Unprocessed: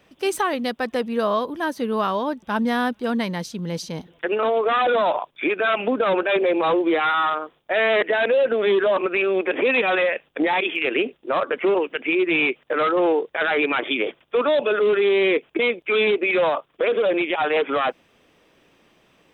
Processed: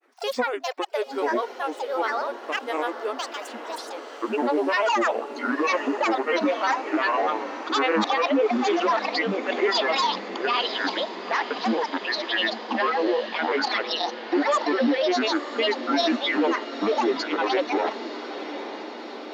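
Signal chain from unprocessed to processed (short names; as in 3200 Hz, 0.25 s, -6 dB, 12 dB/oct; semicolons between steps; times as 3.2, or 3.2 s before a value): brick-wall FIR high-pass 380 Hz; bell 6600 Hz -4 dB 1.5 oct; grains, spray 13 ms, pitch spread up and down by 12 st; diffused feedback echo 0.923 s, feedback 68%, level -12 dB; gain -1.5 dB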